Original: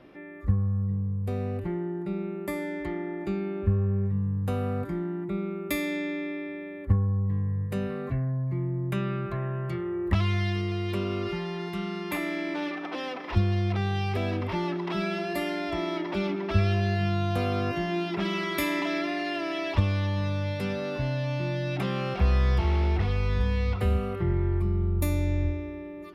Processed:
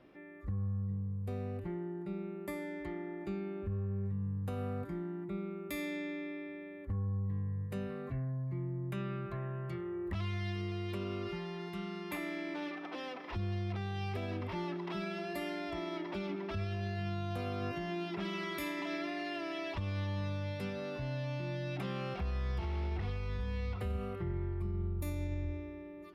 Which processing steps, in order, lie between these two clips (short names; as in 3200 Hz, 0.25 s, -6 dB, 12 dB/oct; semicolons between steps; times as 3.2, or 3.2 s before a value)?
limiter -20.5 dBFS, peak gain reduction 9 dB; gain -8.5 dB